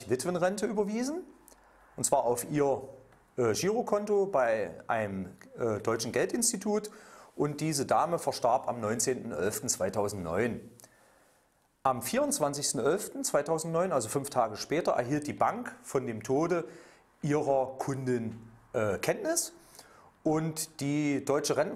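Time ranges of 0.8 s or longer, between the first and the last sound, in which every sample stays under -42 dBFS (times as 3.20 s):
10.85–11.85 s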